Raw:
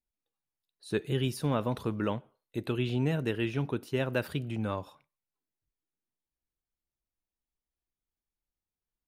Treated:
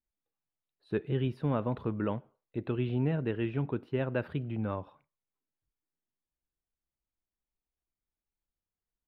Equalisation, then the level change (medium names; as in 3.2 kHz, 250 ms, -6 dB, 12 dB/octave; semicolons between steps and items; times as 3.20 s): distance through air 480 m; 0.0 dB